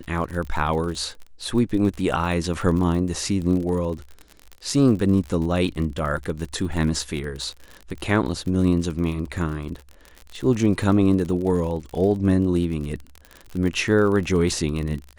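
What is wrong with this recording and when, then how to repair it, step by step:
surface crackle 47 per second −29 dBFS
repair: click removal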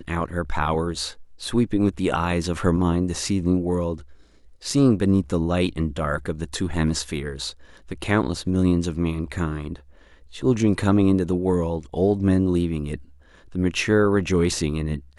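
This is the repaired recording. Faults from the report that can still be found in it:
none of them is left

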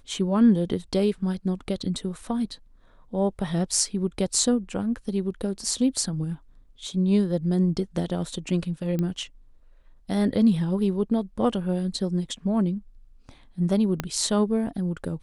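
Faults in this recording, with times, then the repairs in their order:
0:08.99: click −16 dBFS
0:14.00: click −11 dBFS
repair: click removal

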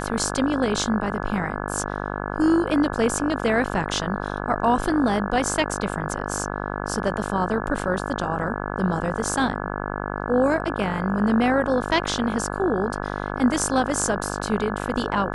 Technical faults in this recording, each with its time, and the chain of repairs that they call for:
mains buzz 50 Hz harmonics 34 −29 dBFS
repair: hum removal 50 Hz, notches 34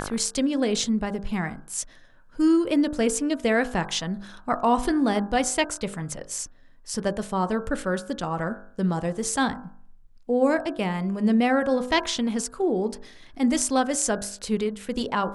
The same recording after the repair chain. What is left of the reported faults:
none of them is left

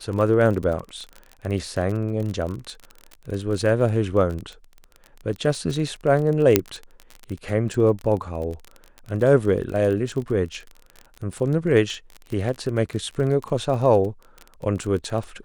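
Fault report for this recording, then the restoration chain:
surface crackle 27 per second −28 dBFS
0:06.56: click 0 dBFS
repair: click removal

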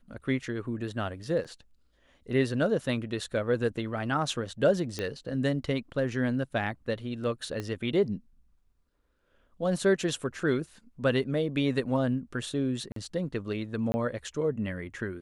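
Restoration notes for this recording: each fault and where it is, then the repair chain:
0:01.44–0:01.45: drop-out 6.2 ms
0:04.99: click −18 dBFS
0:07.60: click −21 dBFS
0:12.92–0:12.96: drop-out 43 ms
0:13.92–0:13.94: drop-out 20 ms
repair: click removal
repair the gap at 0:01.44, 6.2 ms
repair the gap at 0:12.92, 43 ms
repair the gap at 0:13.92, 20 ms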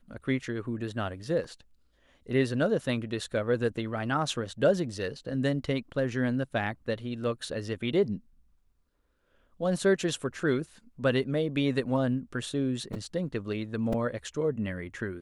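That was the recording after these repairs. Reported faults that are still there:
0:07.60: click

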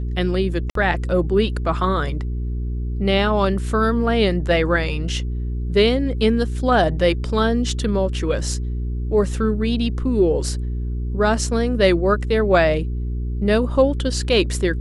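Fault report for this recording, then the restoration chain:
mains hum 60 Hz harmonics 7 −24 dBFS
0:00.70–0:00.75: drop-out 53 ms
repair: hum removal 60 Hz, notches 7
repair the gap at 0:00.70, 53 ms

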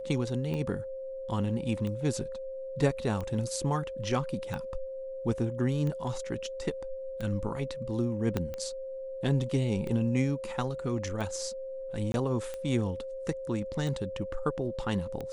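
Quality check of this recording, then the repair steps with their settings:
scratch tick 45 rpm −24 dBFS
whistle 530 Hz −36 dBFS
0:08.37: click −16 dBFS
0:12.12–0:12.14: drop-out 21 ms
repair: click removal
notch filter 530 Hz, Q 30
repair the gap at 0:12.12, 21 ms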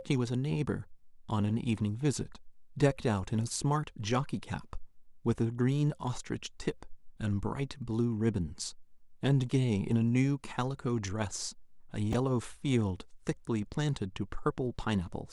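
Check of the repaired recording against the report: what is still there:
0:08.37: click

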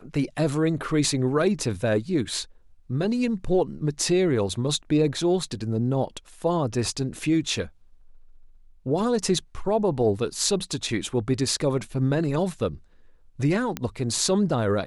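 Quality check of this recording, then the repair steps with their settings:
0:13.77: click −12 dBFS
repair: click removal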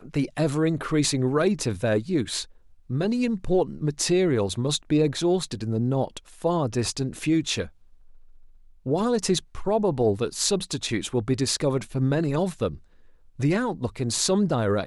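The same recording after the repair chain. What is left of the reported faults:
none of them is left

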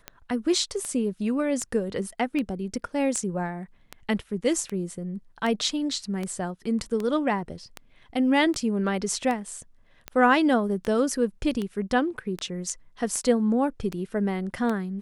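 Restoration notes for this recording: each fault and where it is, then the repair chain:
scratch tick 78 rpm −17 dBFS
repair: click removal

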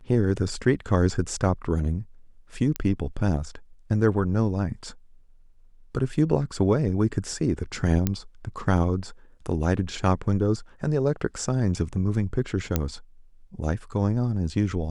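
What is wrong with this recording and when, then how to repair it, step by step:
0:02.76: click −11 dBFS
0:08.07: click −9 dBFS
0:12.76: click −8 dBFS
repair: click removal

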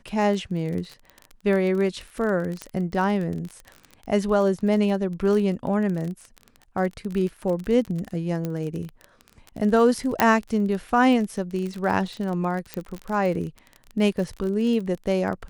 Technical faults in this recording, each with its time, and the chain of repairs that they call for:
surface crackle 30 per second −29 dBFS
0:02.62: click −16 dBFS
0:08.45: click −16 dBFS
0:10.20: click −3 dBFS
0:12.74: click −13 dBFS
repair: click removal

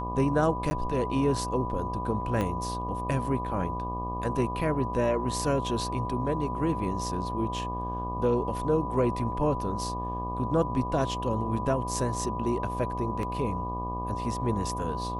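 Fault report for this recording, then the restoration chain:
mains buzz 60 Hz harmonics 20 −35 dBFS
whistle 990 Hz −33 dBFS
0:00.70–0:00.71: drop-out 10 ms
0:02.41: click −17 dBFS
0:13.23: drop-out 2 ms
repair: click removal
hum removal 60 Hz, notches 20
notch filter 990 Hz, Q 30
repair the gap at 0:00.70, 10 ms
repair the gap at 0:13.23, 2 ms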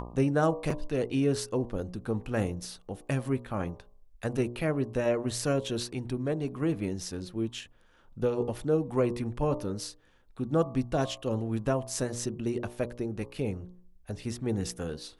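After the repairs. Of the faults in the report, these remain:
0:02.41: click

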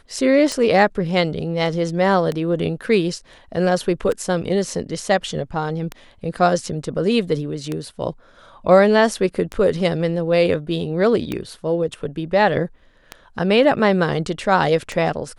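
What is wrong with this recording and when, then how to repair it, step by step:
scratch tick 33 1/3 rpm −11 dBFS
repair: click removal

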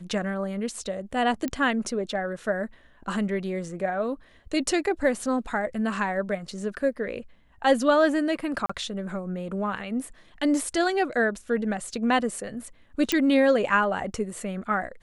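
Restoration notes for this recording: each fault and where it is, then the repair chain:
0:01.48: click −16 dBFS
0:08.66–0:08.70: drop-out 35 ms
0:13.12: click −7 dBFS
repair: click removal
repair the gap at 0:08.66, 35 ms

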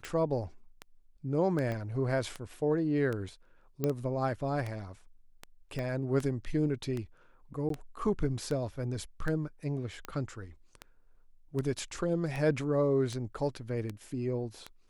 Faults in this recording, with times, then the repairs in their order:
scratch tick 78 rpm −23 dBFS
0:01.72: click −24 dBFS
0:03.84: click −17 dBFS
0:05.79: click −24 dBFS
0:07.69–0:07.70: drop-out 13 ms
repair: click removal
repair the gap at 0:07.69, 13 ms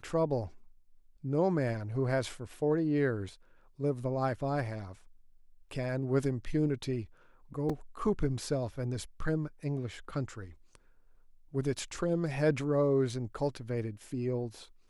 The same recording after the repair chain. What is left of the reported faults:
0:01.72: click
0:05.79: click

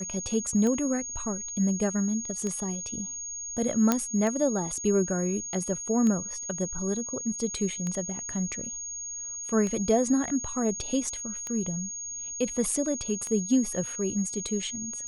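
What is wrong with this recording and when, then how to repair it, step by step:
scratch tick 33 1/3 rpm −20 dBFS
whistle 6,600 Hz −34 dBFS
0:03.92: click −8 dBFS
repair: click removal
notch filter 6,600 Hz, Q 30

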